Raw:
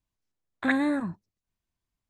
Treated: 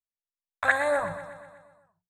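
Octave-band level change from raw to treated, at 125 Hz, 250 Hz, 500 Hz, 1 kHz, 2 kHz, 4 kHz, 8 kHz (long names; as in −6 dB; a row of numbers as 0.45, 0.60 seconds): −3.0 dB, −17.0 dB, +8.5 dB, +7.0 dB, +6.0 dB, 0.0 dB, can't be measured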